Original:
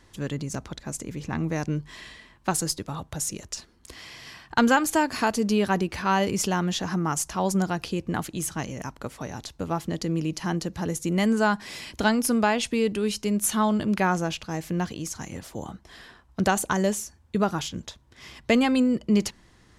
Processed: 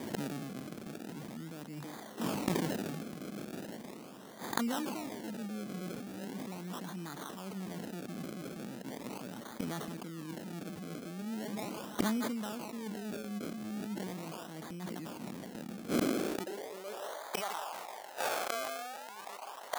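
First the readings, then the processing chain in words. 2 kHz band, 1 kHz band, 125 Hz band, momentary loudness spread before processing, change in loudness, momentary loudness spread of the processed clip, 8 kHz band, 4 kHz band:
-14.5 dB, -13.5 dB, -14.0 dB, 15 LU, -13.5 dB, 11 LU, -15.5 dB, -11.5 dB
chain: on a send: thinning echo 158 ms, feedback 58%, high-pass 810 Hz, level -7 dB; on the sum: decimation with a swept rate 32×, swing 100% 0.39 Hz; reverse; compression 16:1, threshold -33 dBFS, peak gain reduction 19.5 dB; reverse; high-pass sweep 210 Hz -> 780 Hz, 15.79–17.51 s; treble shelf 5 kHz +5 dB; inverted gate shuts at -31 dBFS, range -25 dB; decay stretcher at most 22 dB/s; trim +15 dB

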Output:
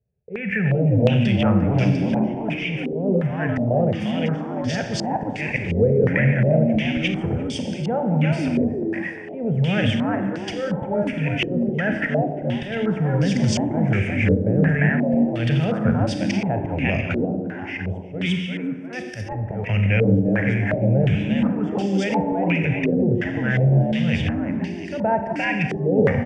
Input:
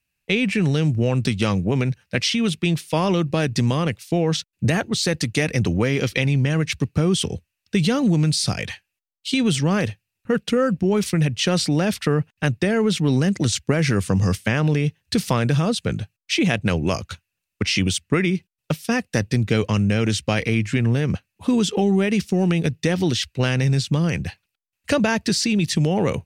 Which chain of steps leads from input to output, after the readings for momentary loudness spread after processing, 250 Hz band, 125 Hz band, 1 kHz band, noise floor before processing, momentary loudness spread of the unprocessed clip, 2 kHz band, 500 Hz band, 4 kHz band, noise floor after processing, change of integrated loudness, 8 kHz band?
9 LU, +0.5 dB, +0.5 dB, +1.0 dB, -82 dBFS, 6 LU, +0.5 dB, +1.0 dB, -7.5 dB, -32 dBFS, 0.0 dB, -13.0 dB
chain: high-pass 99 Hz 12 dB/octave; bass shelf 220 Hz +11 dB; slow attack 381 ms; in parallel at -1 dB: compression, threshold -28 dBFS, peak gain reduction 17 dB; on the sum: peak limiter -11 dBFS, peak gain reduction 9.5 dB; static phaser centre 1.1 kHz, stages 6; on a send: frequency-shifting echo 349 ms, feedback 33%, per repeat +89 Hz, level -3 dB; on the sum: Schroeder reverb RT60 1.7 s, combs from 30 ms, DRR 5 dB; step-sequenced low-pass 2.8 Hz 450–4700 Hz

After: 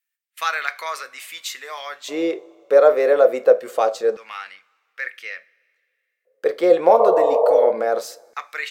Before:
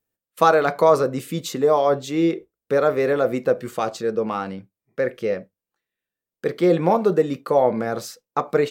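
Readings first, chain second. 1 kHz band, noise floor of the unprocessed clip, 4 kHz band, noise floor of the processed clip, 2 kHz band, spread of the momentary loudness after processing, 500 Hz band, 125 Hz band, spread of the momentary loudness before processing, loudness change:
-0.5 dB, under -85 dBFS, +2.0 dB, -76 dBFS, +2.5 dB, 19 LU, +2.5 dB, under -20 dB, 12 LU, +3.0 dB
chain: spectral replace 7.02–7.64 s, 420–1200 Hz both; two-slope reverb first 0.28 s, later 2.2 s, from -19 dB, DRR 14.5 dB; LFO high-pass square 0.24 Hz 540–2000 Hz

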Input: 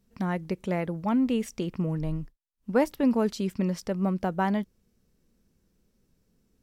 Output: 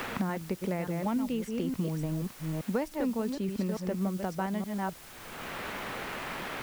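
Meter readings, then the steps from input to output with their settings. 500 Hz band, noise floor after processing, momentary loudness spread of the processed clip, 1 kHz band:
-4.5 dB, -49 dBFS, 6 LU, -3.0 dB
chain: chunks repeated in reverse 290 ms, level -6.5 dB; word length cut 8-bit, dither triangular; three bands compressed up and down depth 100%; trim -5.5 dB

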